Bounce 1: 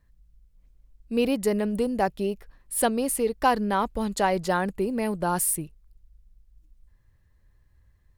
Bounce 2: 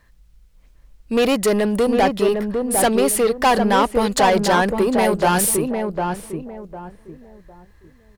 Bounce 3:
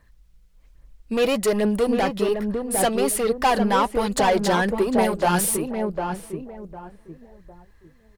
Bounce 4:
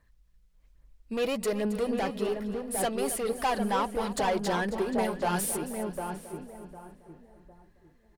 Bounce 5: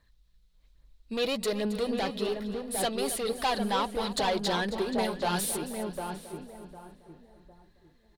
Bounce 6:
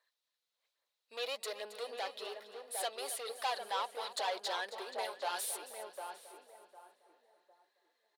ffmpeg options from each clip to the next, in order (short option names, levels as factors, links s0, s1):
-filter_complex "[0:a]lowshelf=f=77:g=11.5,asplit=2[s0][s1];[s1]highpass=f=720:p=1,volume=14.1,asoftclip=type=tanh:threshold=0.398[s2];[s0][s2]amix=inputs=2:normalize=0,lowpass=f=6600:p=1,volume=0.501,asplit=2[s3][s4];[s4]adelay=754,lowpass=f=1100:p=1,volume=0.668,asplit=2[s5][s6];[s6]adelay=754,lowpass=f=1100:p=1,volume=0.3,asplit=2[s7][s8];[s8]adelay=754,lowpass=f=1100:p=1,volume=0.3,asplit=2[s9][s10];[s10]adelay=754,lowpass=f=1100:p=1,volume=0.3[s11];[s5][s7][s9][s11]amix=inputs=4:normalize=0[s12];[s3][s12]amix=inputs=2:normalize=0"
-af "flanger=delay=0.1:depth=6:regen=46:speed=1.2:shape=sinusoidal"
-af "aecho=1:1:271|542|813|1084|1355:0.211|0.112|0.0594|0.0315|0.0167,volume=0.376"
-af "equalizer=f=3900:t=o:w=0.58:g=12,volume=0.891"
-af "highpass=f=520:w=0.5412,highpass=f=520:w=1.3066,volume=0.447"